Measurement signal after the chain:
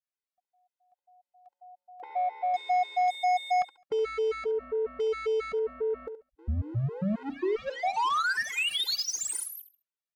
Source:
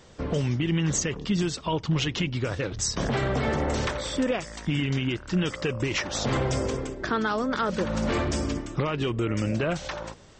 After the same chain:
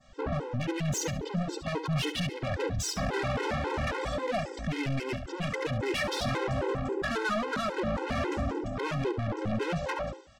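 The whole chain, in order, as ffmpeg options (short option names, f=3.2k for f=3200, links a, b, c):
-filter_complex "[0:a]afwtdn=0.0178,adynamicequalizer=threshold=0.00891:dfrequency=2900:dqfactor=0.7:tfrequency=2900:tqfactor=0.7:attack=5:release=100:ratio=0.375:range=1.5:mode=cutabove:tftype=bell,asplit=2[a][b];[b]alimiter=level_in=2.5dB:limit=-24dB:level=0:latency=1:release=114,volume=-2.5dB,volume=-2.5dB[c];[a][c]amix=inputs=2:normalize=0,volume=26.5dB,asoftclip=hard,volume=-26.5dB,asplit=2[d][e];[e]highpass=f=720:p=1,volume=9dB,asoftclip=type=tanh:threshold=-26.5dB[f];[d][f]amix=inputs=2:normalize=0,lowpass=f=3.5k:p=1,volume=-6dB,asoftclip=type=tanh:threshold=-32dB,aecho=1:1:70|140|210:0.266|0.0692|0.018,afftfilt=real='re*gt(sin(2*PI*3.7*pts/sr)*(1-2*mod(floor(b*sr/1024/270),2)),0)':imag='im*gt(sin(2*PI*3.7*pts/sr)*(1-2*mod(floor(b*sr/1024/270),2)),0)':win_size=1024:overlap=0.75,volume=7.5dB"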